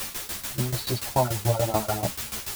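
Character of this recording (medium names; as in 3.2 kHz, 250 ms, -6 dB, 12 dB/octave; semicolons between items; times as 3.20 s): phasing stages 8, 3.6 Hz, lowest notch 240–2800 Hz; a quantiser's noise floor 6-bit, dither triangular; tremolo saw down 6.9 Hz, depth 90%; a shimmering, thickened sound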